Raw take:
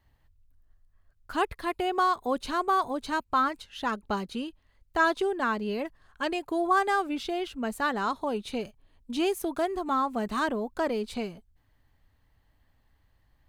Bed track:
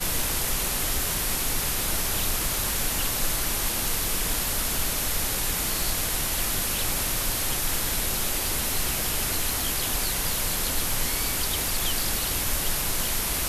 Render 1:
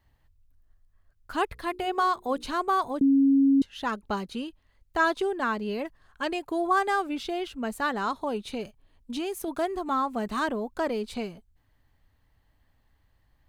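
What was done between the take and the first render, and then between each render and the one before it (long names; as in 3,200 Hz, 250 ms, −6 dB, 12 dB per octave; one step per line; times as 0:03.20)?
0:01.47–0:02.44: mains-hum notches 60/120/180/240/300/360/420/480 Hz
0:03.01–0:03.62: beep over 274 Hz −16.5 dBFS
0:08.48–0:09.48: downward compressor, threshold −27 dBFS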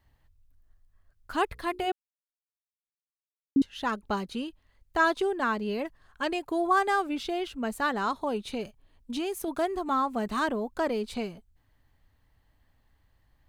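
0:01.92–0:03.56: silence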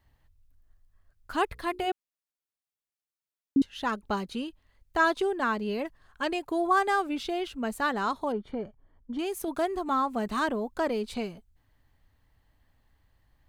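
0:08.32–0:09.19: Savitzky-Golay smoothing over 41 samples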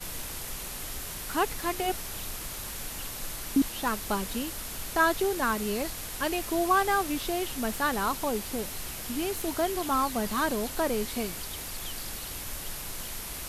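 mix in bed track −11 dB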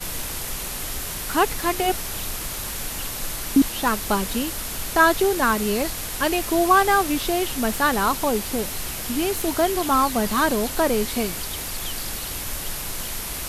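level +7.5 dB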